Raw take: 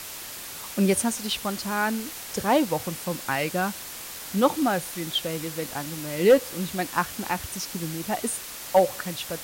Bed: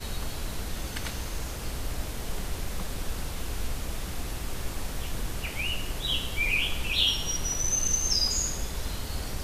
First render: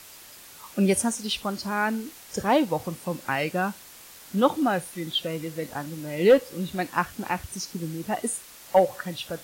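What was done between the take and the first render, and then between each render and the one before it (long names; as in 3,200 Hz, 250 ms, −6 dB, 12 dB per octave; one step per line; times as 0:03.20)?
noise reduction from a noise print 9 dB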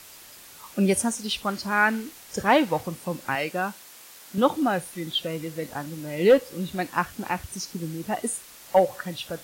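0:01.38–0:02.81: dynamic equaliser 1,800 Hz, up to +8 dB, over −39 dBFS, Q 0.87
0:03.35–0:04.38: high-pass filter 280 Hz 6 dB per octave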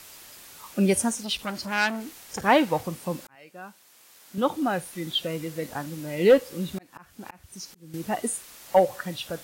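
0:01.23–0:02.44: saturating transformer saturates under 2,900 Hz
0:03.27–0:05.07: fade in
0:06.55–0:07.94: volume swells 606 ms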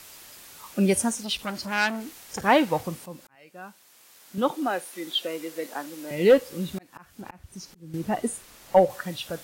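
0:03.06–0:03.62: fade in, from −12.5 dB
0:04.51–0:06.11: high-pass filter 270 Hz 24 dB per octave
0:07.21–0:08.90: spectral tilt −1.5 dB per octave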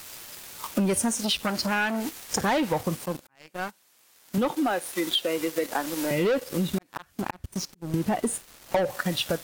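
leveller curve on the samples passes 3
downward compressor 6 to 1, threshold −23 dBFS, peak gain reduction 13 dB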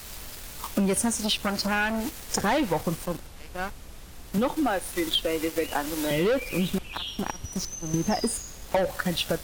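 mix in bed −11 dB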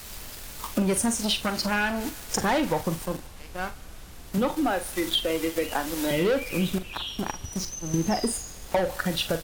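double-tracking delay 43 ms −11.5 dB
feedback echo with a high-pass in the loop 73 ms, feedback 82%, level −22.5 dB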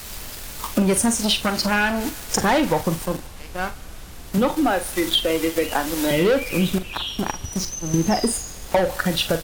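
level +5.5 dB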